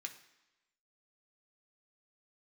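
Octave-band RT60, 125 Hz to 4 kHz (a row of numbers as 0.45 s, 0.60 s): 0.85 s, 0.95 s, 1.0 s, 1.0 s, 1.1 s, 1.0 s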